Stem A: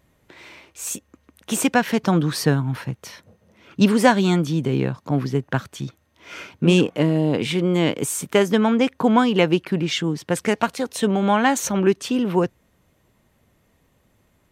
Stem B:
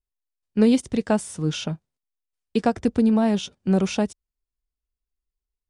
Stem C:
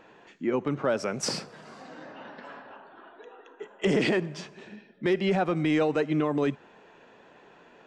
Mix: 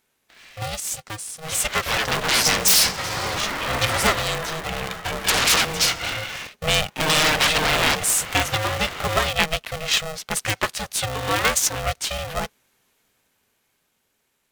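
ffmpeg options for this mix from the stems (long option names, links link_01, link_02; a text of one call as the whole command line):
ffmpeg -i stem1.wav -i stem2.wav -i stem3.wav -filter_complex "[0:a]volume=-8dB,asplit=2[link_01][link_02];[1:a]aecho=1:1:2.2:0.37,volume=-6dB[link_03];[2:a]acompressor=threshold=-28dB:ratio=4,aeval=exprs='0.119*sin(PI/2*6.31*val(0)/0.119)':channel_layout=same,flanger=delay=7.2:depth=7.8:regen=86:speed=0.23:shape=triangular,adelay=1450,volume=-0.5dB,asplit=3[link_04][link_05][link_06];[link_04]atrim=end=6.47,asetpts=PTS-STARTPTS,afade=type=out:start_time=6.466:duration=0.004:curve=hsin[link_07];[link_05]atrim=start=6.47:end=7,asetpts=PTS-STARTPTS,volume=0[link_08];[link_06]atrim=start=7,asetpts=PTS-STARTPTS,afade=type=in:duration=0.004:curve=hsin[link_09];[link_07][link_08][link_09]concat=n=3:v=0:a=1[link_10];[link_02]apad=whole_len=251187[link_11];[link_03][link_11]sidechaincompress=threshold=-37dB:ratio=8:attack=5.1:release=578[link_12];[link_01][link_12][link_10]amix=inputs=3:normalize=0,tiltshelf=frequency=1100:gain=-8.5,dynaudnorm=framelen=210:gausssize=17:maxgain=7dB,aeval=exprs='val(0)*sgn(sin(2*PI*320*n/s))':channel_layout=same" out.wav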